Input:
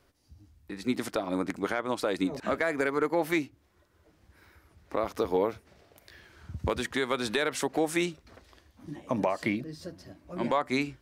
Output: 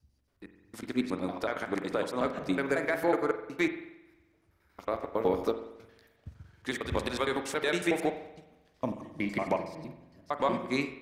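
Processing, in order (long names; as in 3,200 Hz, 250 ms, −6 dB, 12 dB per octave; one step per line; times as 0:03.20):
slices reordered back to front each 92 ms, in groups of 4
spring reverb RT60 1.3 s, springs 44 ms, chirp 65 ms, DRR 4.5 dB
expander for the loud parts 1.5 to 1, over −45 dBFS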